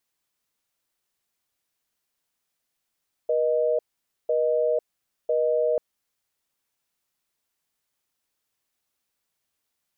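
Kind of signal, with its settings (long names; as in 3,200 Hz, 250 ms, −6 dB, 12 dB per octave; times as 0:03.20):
call progress tone busy tone, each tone −22.5 dBFS 2.49 s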